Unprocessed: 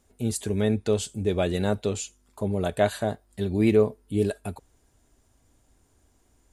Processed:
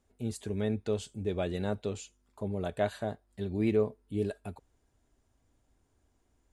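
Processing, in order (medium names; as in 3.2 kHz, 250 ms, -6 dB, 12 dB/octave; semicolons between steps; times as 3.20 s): treble shelf 7 kHz -10.5 dB; trim -7.5 dB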